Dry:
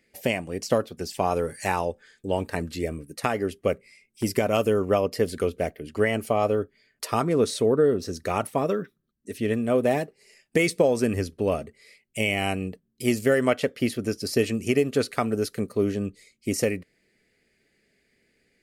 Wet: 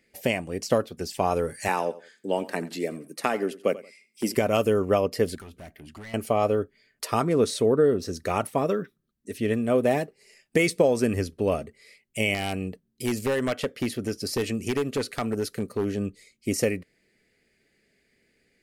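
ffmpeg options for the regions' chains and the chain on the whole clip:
-filter_complex "[0:a]asettb=1/sr,asplit=3[s0][s1][s2];[s0]atrim=end=1.684[s3];[s1]atrim=start=1.68:end=4.35,asetpts=PTS-STARTPTS,afade=t=in:d=0.004:c=qsin,afade=t=out:st=2.666:d=0.004:c=qsin,highpass=f=180:w=0.5412,highpass=f=180:w=1.3066,aecho=1:1:88|176:0.133|0.036,atrim=end_sample=117747[s4];[s2]atrim=start=4.346[s5];[s3][s4]acrossfade=d=0.004:c1=hsin:c2=qsin[s6];[s6][s5]acrossfade=d=0.004:c1=qsin:c2=hsin,asettb=1/sr,asplit=3[s7][s8][s9];[s7]atrim=end=5.354[s10];[s8]atrim=start=5.35:end=6.14,asetpts=PTS-STARTPTS,afade=t=in:d=0.004:c=qsin,afade=t=out:st=0.786:d=0.004:c=qsin,equalizer=f=480:t=o:w=0.56:g=-15,acompressor=threshold=0.00794:ratio=2:attack=3.2:release=140:knee=1:detection=peak,asoftclip=type=hard:threshold=0.0119[s11];[s9]atrim=start=6.136[s12];[s10][s11]acrossfade=d=0.004:c1=hsin:c2=qsin[s13];[s13][s12]acrossfade=d=0.004:c1=qsin:c2=hsin,asettb=1/sr,asplit=3[s14][s15][s16];[s14]atrim=end=12.344[s17];[s15]atrim=start=12.34:end=15.98,asetpts=PTS-STARTPTS,afade=t=in:d=0.004:c=qsin,afade=t=out:st=3.636:d=0.004:c=qsin,acompressor=threshold=0.0562:ratio=1.5:attack=3.2:release=140:knee=1:detection=peak,aeval=exprs='0.119*(abs(mod(val(0)/0.119+3,4)-2)-1)':c=same[s18];[s16]atrim=start=15.976[s19];[s17][s18]acrossfade=d=0.004:c1=hsin:c2=qsin[s20];[s20][s19]acrossfade=d=0.004:c1=qsin:c2=hsin"

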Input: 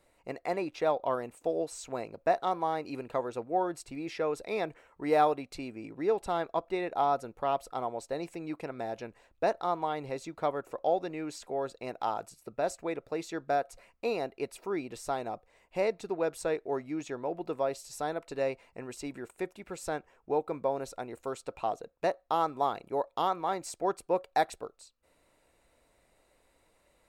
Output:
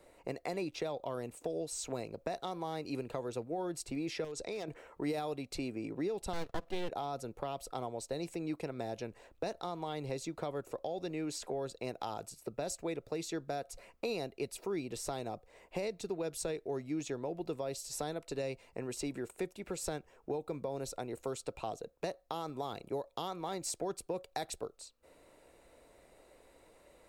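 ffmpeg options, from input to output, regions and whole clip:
-filter_complex "[0:a]asettb=1/sr,asplit=3[s0][s1][s2];[s0]atrim=end=4.244[s3];[s1]atrim=start=4.24:end=4.68,asetpts=PTS-STARTPTS,afade=t=in:d=0.004:c=qsin,afade=t=out:st=0.436:d=0.004:c=qsin,lowpass=f=7000:t=q:w=2.1,aeval=exprs='0.0631*(abs(mod(val(0)/0.0631+3,4)-2)-1)':c=same,acompressor=threshold=0.0141:ratio=6:attack=3.2:release=140:knee=1:detection=peak[s4];[s2]atrim=start=4.676[s5];[s3][s4]acrossfade=d=0.004:c1=hsin:c2=qsin[s6];[s6][s5]acrossfade=d=0.004:c1=qsin:c2=hsin,asettb=1/sr,asplit=3[s7][s8][s9];[s7]atrim=end=6.334[s10];[s8]atrim=start=6.33:end=6.89,asetpts=PTS-STARTPTS,afade=t=in:d=0.004:c=qsin,afade=t=out:st=0.556:d=0.004:c=qsin,aecho=1:1:3.9:0.35,atrim=end_sample=24696,aeval=exprs='max(val(0),0)':c=same[s11];[s9]atrim=start=6.886[s12];[s10][s11]acrossfade=d=0.004:c1=hsin:c2=qsin[s13];[s13][s12]acrossfade=d=0.004:c1=qsin:c2=hsin,equalizer=f=430:t=o:w=1.5:g=6.5,alimiter=limit=0.126:level=0:latency=1:release=44,acrossover=split=180|3000[s14][s15][s16];[s15]acompressor=threshold=0.00708:ratio=4[s17];[s14][s17][s16]amix=inputs=3:normalize=0,volume=1.5"

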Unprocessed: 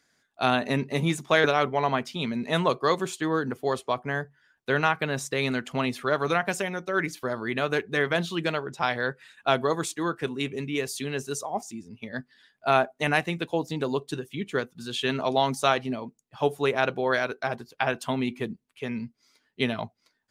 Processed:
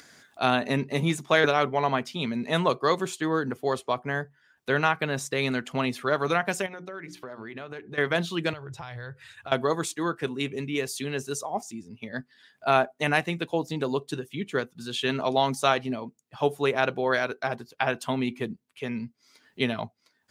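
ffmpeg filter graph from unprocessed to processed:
-filter_complex "[0:a]asettb=1/sr,asplit=3[s0][s1][s2];[s0]atrim=end=6.664[s3];[s1]atrim=start=6.66:end=7.98,asetpts=PTS-STARTPTS,afade=t=in:d=0.004:c=qsin,afade=t=out:st=1.316:d=0.004:c=qsin,highshelf=f=5900:g=-11.5,bandreject=f=60:t=h:w=6,bandreject=f=120:t=h:w=6,bandreject=f=180:t=h:w=6,bandreject=f=240:t=h:w=6,bandreject=f=300:t=h:w=6,bandreject=f=360:t=h:w=6,acompressor=threshold=0.0158:ratio=5:attack=3.2:release=140:knee=1:detection=peak[s4];[s2]atrim=start=7.976[s5];[s3][s4]acrossfade=d=0.004:c1=hsin:c2=qsin[s6];[s6][s5]acrossfade=d=0.004:c1=qsin:c2=hsin,asettb=1/sr,asplit=3[s7][s8][s9];[s7]atrim=end=8.534[s10];[s8]atrim=start=8.53:end=9.52,asetpts=PTS-STARTPTS,afade=t=in:d=0.004:c=qsin,afade=t=out:st=0.986:d=0.004:c=qsin,lowshelf=f=150:t=q:w=3:g=12.5,acompressor=threshold=0.0178:ratio=10:attack=3.2:release=140:knee=1:detection=peak[s11];[s9]atrim=start=9.516[s12];[s10][s11]acrossfade=d=0.004:c1=hsin:c2=qsin[s13];[s13][s12]acrossfade=d=0.004:c1=qsin:c2=hsin,highpass=57,acompressor=mode=upward:threshold=0.01:ratio=2.5"

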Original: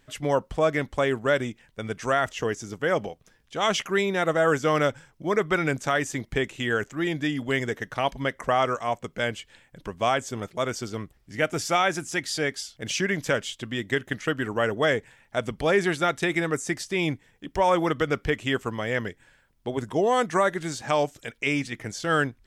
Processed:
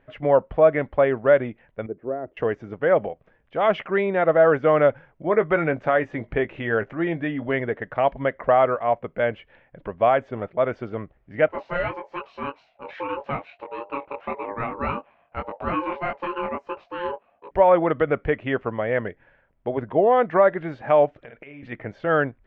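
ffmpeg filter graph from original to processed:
-filter_complex "[0:a]asettb=1/sr,asplit=3[s0][s1][s2];[s0]atrim=end=1.864[s3];[s1]atrim=start=1.86:end=2.37,asetpts=PTS-STARTPTS,afade=t=in:d=0.004:c=qsin,afade=t=out:st=0.506:d=0.004:c=qsin,bandpass=f=350:t=q:w=3.2,aemphasis=mode=reproduction:type=bsi[s4];[s2]atrim=start=2.366[s5];[s3][s4]acrossfade=d=0.004:c1=hsin:c2=qsin[s6];[s6][s5]acrossfade=d=0.004:c1=qsin:c2=hsin,asettb=1/sr,asplit=3[s7][s8][s9];[s7]atrim=end=5.274[s10];[s8]atrim=start=5.27:end=7.54,asetpts=PTS-STARTPTS,afade=t=in:d=0.004:c=qsin,afade=t=out:st=2.266:d=0.004:c=qsin,asplit=2[s11][s12];[s12]adelay=18,volume=0.282[s13];[s11][s13]amix=inputs=2:normalize=0,atrim=end_sample=100107,acompressor=mode=upward:threshold=0.0316:ratio=2.5:attack=3.2:release=140:knee=2.83:detection=peak[s14];[s9]atrim=start=7.536[s15];[s10][s14]acrossfade=d=0.004:c1=hsin:c2=qsin[s16];[s16][s15]acrossfade=d=0.004:c1=qsin:c2=hsin,asettb=1/sr,asplit=3[s17][s18][s19];[s17]atrim=end=11.484[s20];[s18]atrim=start=11.48:end=17.51,asetpts=PTS-STARTPTS,afade=t=in:d=0.004:c=qsin,afade=t=out:st=6.026:d=0.004:c=qsin,highshelf=f=6700:g=-4,flanger=delay=18:depth=6.1:speed=1.7,aeval=exprs='val(0)*sin(2*PI*700*n/s)':c=same[s21];[s19]atrim=start=17.506[s22];[s20][s21]acrossfade=d=0.004:c1=hsin:c2=qsin[s23];[s23][s22]acrossfade=d=0.004:c1=qsin:c2=hsin,asettb=1/sr,asplit=3[s24][s25][s26];[s24]atrim=end=21.174[s27];[s25]atrim=start=21.17:end=21.63,asetpts=PTS-STARTPTS,afade=t=in:d=0.004:c=qsin,afade=t=out:st=0.456:d=0.004:c=qsin,asplit=2[s28][s29];[s29]adelay=49,volume=0.447[s30];[s28][s30]amix=inputs=2:normalize=0,atrim=end_sample=20286,acompressor=threshold=0.0112:ratio=10:attack=3.2:release=140:knee=1:detection=peak[s31];[s26]atrim=start=21.626[s32];[s27][s31]acrossfade=d=0.004:c1=hsin:c2=qsin[s33];[s33][s32]acrossfade=d=0.004:c1=qsin:c2=hsin,lowpass=f=2400:w=0.5412,lowpass=f=2400:w=1.3066,equalizer=f=600:t=o:w=0.82:g=8.5"

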